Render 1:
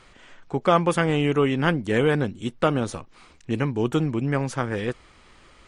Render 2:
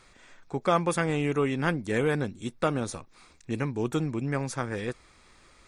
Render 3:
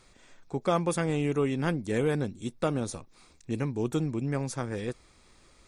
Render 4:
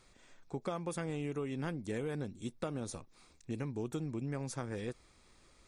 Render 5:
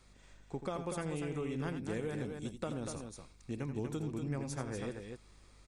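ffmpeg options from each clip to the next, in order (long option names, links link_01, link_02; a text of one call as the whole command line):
ffmpeg -i in.wav -af "highshelf=frequency=4100:gain=7.5,bandreject=frequency=3000:width=6.5,volume=-5.5dB" out.wav
ffmpeg -i in.wav -af "equalizer=frequency=1600:width_type=o:width=1.9:gain=-6" out.wav
ffmpeg -i in.wav -af "acompressor=threshold=-29dB:ratio=6,volume=-5dB" out.wav
ffmpeg -i in.wav -af "aeval=exprs='val(0)+0.000794*(sin(2*PI*50*n/s)+sin(2*PI*2*50*n/s)/2+sin(2*PI*3*50*n/s)/3+sin(2*PI*4*50*n/s)/4+sin(2*PI*5*50*n/s)/5)':channel_layout=same,aecho=1:1:84.55|242:0.316|0.501,volume=-1dB" out.wav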